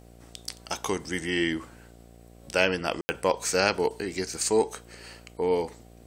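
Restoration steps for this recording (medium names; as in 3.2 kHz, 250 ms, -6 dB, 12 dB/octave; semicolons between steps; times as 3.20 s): de-hum 58.3 Hz, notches 13; room tone fill 3.01–3.09 s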